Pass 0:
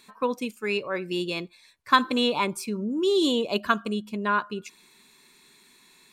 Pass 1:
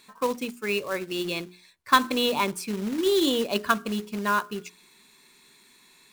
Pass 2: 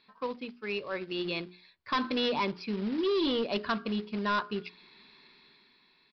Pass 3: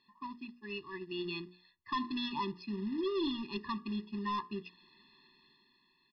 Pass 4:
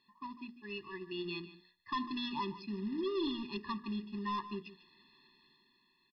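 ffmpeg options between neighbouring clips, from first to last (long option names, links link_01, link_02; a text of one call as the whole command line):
ffmpeg -i in.wav -af "bandreject=frequency=60:width_type=h:width=6,bandreject=frequency=120:width_type=h:width=6,bandreject=frequency=180:width_type=h:width=6,bandreject=frequency=240:width_type=h:width=6,bandreject=frequency=300:width_type=h:width=6,bandreject=frequency=360:width_type=h:width=6,bandreject=frequency=420:width_type=h:width=6,acrusher=bits=3:mode=log:mix=0:aa=0.000001" out.wav
ffmpeg -i in.wav -af "dynaudnorm=framelen=220:gausssize=9:maxgain=12dB,aresample=11025,volume=16.5dB,asoftclip=hard,volume=-16.5dB,aresample=44100,volume=-8.5dB" out.wav
ffmpeg -i in.wav -af "afftfilt=real='re*eq(mod(floor(b*sr/1024/410),2),0)':imag='im*eq(mod(floor(b*sr/1024/410),2),0)':win_size=1024:overlap=0.75,volume=-4.5dB" out.wav
ffmpeg -i in.wav -af "aecho=1:1:148:0.178,volume=-1.5dB" out.wav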